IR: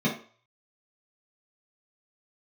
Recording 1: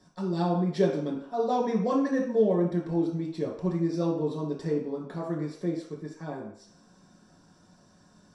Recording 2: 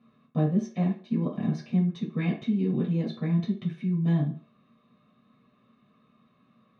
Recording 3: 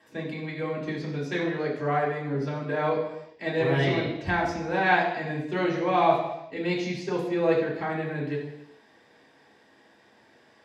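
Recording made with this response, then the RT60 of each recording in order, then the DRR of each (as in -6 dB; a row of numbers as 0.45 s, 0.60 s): 2; 0.60 s, 0.45 s, no single decay rate; -3.5 dB, -6.0 dB, -5.0 dB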